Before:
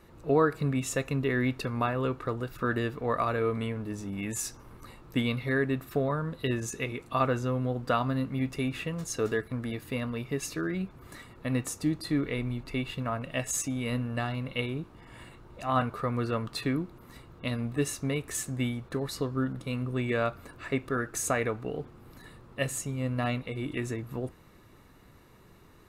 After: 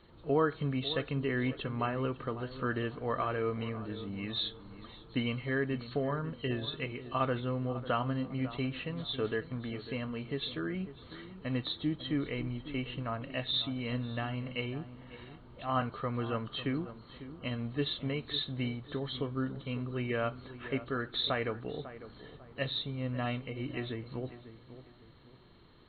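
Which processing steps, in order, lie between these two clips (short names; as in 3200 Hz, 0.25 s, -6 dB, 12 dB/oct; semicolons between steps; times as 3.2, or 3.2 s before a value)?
nonlinear frequency compression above 2900 Hz 4:1; darkening echo 0.548 s, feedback 37%, low-pass 1500 Hz, level -13 dB; gain -4.5 dB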